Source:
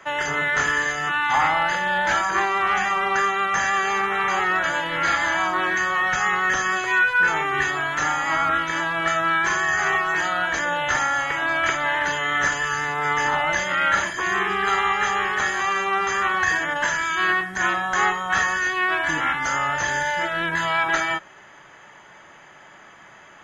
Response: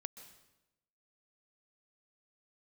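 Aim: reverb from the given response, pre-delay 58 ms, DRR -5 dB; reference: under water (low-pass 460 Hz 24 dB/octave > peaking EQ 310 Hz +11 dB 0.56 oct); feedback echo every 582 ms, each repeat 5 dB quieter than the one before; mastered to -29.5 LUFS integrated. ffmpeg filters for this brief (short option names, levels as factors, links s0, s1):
-filter_complex "[0:a]aecho=1:1:582|1164|1746|2328|2910|3492|4074:0.562|0.315|0.176|0.0988|0.0553|0.031|0.0173,asplit=2[s0][s1];[1:a]atrim=start_sample=2205,adelay=58[s2];[s1][s2]afir=irnorm=-1:irlink=0,volume=2.66[s3];[s0][s3]amix=inputs=2:normalize=0,lowpass=f=460:w=0.5412,lowpass=f=460:w=1.3066,equalizer=f=310:t=o:w=0.56:g=11,volume=0.501"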